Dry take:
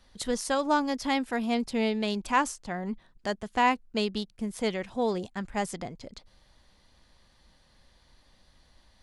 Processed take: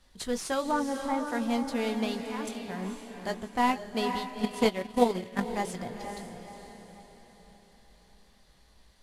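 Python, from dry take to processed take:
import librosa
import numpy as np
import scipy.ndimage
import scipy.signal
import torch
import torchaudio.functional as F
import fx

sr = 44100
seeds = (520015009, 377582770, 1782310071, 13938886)

y = fx.cvsd(x, sr, bps=64000)
y = fx.cheby1_lowpass(y, sr, hz=1300.0, order=2, at=(0.71, 1.27))
y = fx.level_steps(y, sr, step_db=18, at=(2.19, 2.82))
y = fx.chorus_voices(y, sr, voices=6, hz=0.31, base_ms=19, depth_ms=3.2, mix_pct=30)
y = fx.echo_diffused(y, sr, ms=478, feedback_pct=46, wet_db=-6.5)
y = fx.transient(y, sr, attack_db=12, sustain_db=-8, at=(4.43, 5.44), fade=0.02)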